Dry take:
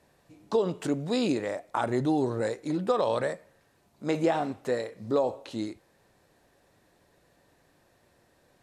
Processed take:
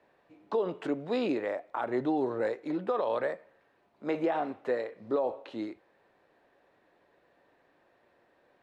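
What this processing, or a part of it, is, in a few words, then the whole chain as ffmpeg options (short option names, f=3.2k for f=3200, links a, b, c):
DJ mixer with the lows and highs turned down: -filter_complex "[0:a]acrossover=split=260 3300:gain=0.2 1 0.0794[a][b][c];[a][b][c]amix=inputs=3:normalize=0,alimiter=limit=-20dB:level=0:latency=1:release=121"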